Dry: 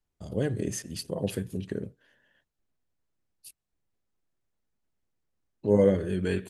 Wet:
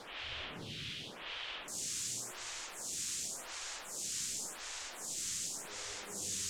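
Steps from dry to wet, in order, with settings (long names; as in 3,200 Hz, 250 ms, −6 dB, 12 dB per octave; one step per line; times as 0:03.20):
low-shelf EQ 360 Hz +9.5 dB
tuned comb filter 120 Hz, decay 1.6 s, mix 60%
gate with flip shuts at −30 dBFS, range −35 dB
transient designer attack −10 dB, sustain +11 dB
echo with a time of its own for lows and highs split 440 Hz, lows 193 ms, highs 532 ms, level −3.5 dB
convolution reverb RT60 1.1 s, pre-delay 73 ms, DRR −5.5 dB
bit-depth reduction 6 bits, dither triangular
low-pass with resonance 3,200 Hz, resonance Q 3, from 0:01.68 7,200 Hz
phaser with staggered stages 0.9 Hz
level −3.5 dB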